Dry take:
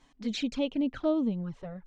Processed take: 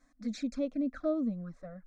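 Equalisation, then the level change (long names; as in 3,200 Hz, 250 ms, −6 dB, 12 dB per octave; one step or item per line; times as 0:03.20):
phaser with its sweep stopped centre 600 Hz, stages 8
−2.5 dB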